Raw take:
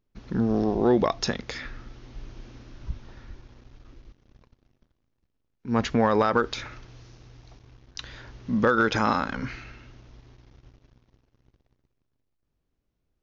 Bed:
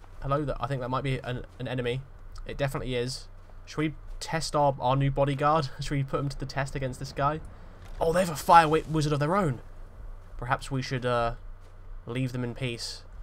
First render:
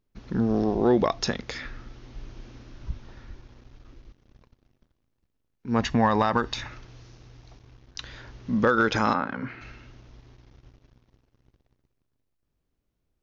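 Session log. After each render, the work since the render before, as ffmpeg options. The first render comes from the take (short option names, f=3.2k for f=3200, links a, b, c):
-filter_complex "[0:a]asettb=1/sr,asplit=3[a][b][c];[a]atrim=end=5.824[d];[b]atrim=start=5.82:end=6.7,asetpts=PTS-STARTPTS,afade=t=in:d=0.004:c=qsin,afade=t=out:st=0.876:d=0.004:c=qsin,aecho=1:1:1.1:0.46,atrim=end_sample=38808[e];[c]atrim=start=6.696[f];[d][e]acrossfade=d=0.004:c1=hsin:c2=qsin[g];[g][f]acrossfade=d=0.004:c1=qsin:c2=hsin,asplit=3[h][i][j];[h]afade=t=out:st=9.13:d=0.02[k];[i]highpass=130,lowpass=2.1k,afade=t=in:st=9.13:d=0.02,afade=t=out:st=9.6:d=0.02[l];[j]afade=t=in:st=9.6:d=0.02[m];[k][l][m]amix=inputs=3:normalize=0"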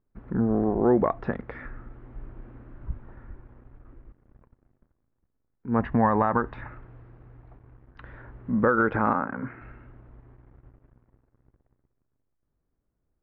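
-af "lowpass=f=1.7k:w=0.5412,lowpass=f=1.7k:w=1.3066"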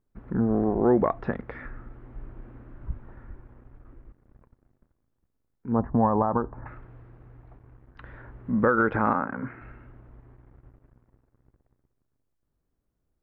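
-filter_complex "[0:a]asettb=1/sr,asplit=3[a][b][c];[a]atrim=end=5.724[d];[b]atrim=start=5.72:end=6.66,asetpts=PTS-STARTPTS,afade=t=in:d=0.004:c=qsin,afade=t=out:st=0.936:d=0.004:c=qsin,lowpass=f=1.1k:w=0.5412,lowpass=f=1.1k:w=1.3066[e];[c]atrim=start=6.656[f];[d][e]acrossfade=d=0.004:c1=hsin:c2=qsin[g];[g][f]acrossfade=d=0.004:c1=qsin:c2=hsin"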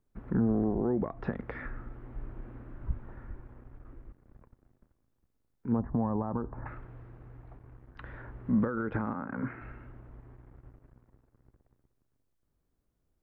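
-filter_complex "[0:a]alimiter=limit=-18dB:level=0:latency=1:release=154,acrossover=split=340[a][b];[b]acompressor=threshold=-35dB:ratio=6[c];[a][c]amix=inputs=2:normalize=0"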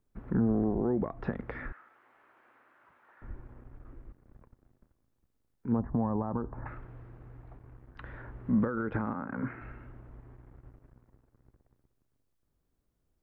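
-filter_complex "[0:a]asettb=1/sr,asplit=3[a][b][c];[a]atrim=end=1.724[d];[b]atrim=start=1.72:end=3.22,asetpts=PTS-STARTPTS,afade=t=in:d=0.004:c=qsin,afade=t=out:st=1.496:d=0.004:c=qsin,highpass=1.1k[e];[c]atrim=start=3.216[f];[d][e]acrossfade=d=0.004:c1=hsin:c2=qsin[g];[g][f]acrossfade=d=0.004:c1=qsin:c2=hsin"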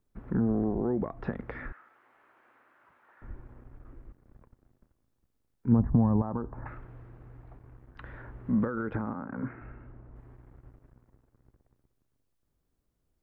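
-filter_complex "[0:a]asettb=1/sr,asplit=3[a][b][c];[a]atrim=end=5.674[d];[b]atrim=start=5.67:end=6.22,asetpts=PTS-STARTPTS,afade=t=in:d=0.004:c=qsin,afade=t=out:st=0.546:d=0.004:c=qsin,bass=f=250:g=10,treble=f=4k:g=6[e];[c]atrim=start=6.216[f];[d][e]acrossfade=d=0.004:c1=hsin:c2=qsin[g];[g][f]acrossfade=d=0.004:c1=qsin:c2=hsin,asettb=1/sr,asplit=3[h][i][j];[h]atrim=end=8.954[k];[i]atrim=start=8.95:end=10.16,asetpts=PTS-STARTPTS,afade=t=in:d=0.004:c=qsin,afade=t=out:st=1.206:d=0.004:c=qsin,lowpass=f=1.3k:p=1[l];[j]atrim=start=10.156[m];[k][l]acrossfade=d=0.004:c1=hsin:c2=qsin[n];[n][m]acrossfade=d=0.004:c1=qsin:c2=hsin"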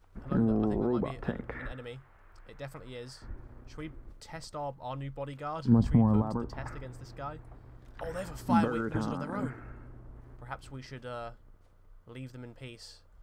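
-filter_complex "[1:a]volume=-13.5dB[a];[0:a][a]amix=inputs=2:normalize=0"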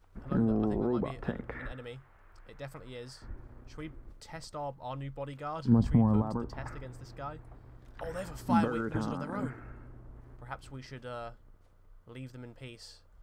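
-af "volume=-1dB"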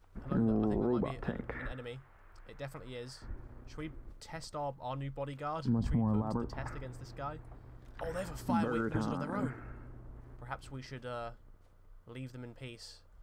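-af "alimiter=limit=-22dB:level=0:latency=1:release=75"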